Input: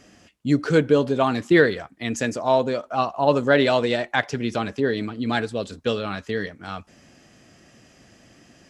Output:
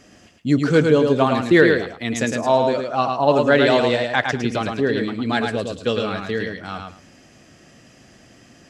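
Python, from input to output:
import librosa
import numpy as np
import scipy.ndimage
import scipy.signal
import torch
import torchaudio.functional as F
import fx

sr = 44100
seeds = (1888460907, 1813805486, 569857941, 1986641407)

y = fx.echo_feedback(x, sr, ms=108, feedback_pct=19, wet_db=-4.5)
y = y * librosa.db_to_amplitude(2.0)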